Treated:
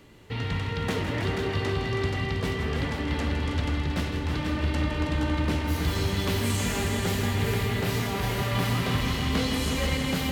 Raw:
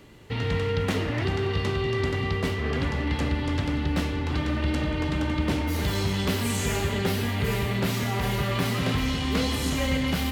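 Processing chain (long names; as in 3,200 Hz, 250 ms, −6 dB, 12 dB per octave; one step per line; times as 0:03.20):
hum removal 66.04 Hz, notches 12
on a send: echo machine with several playback heads 161 ms, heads all three, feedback 42%, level −9.5 dB
on the sum: level −2 dB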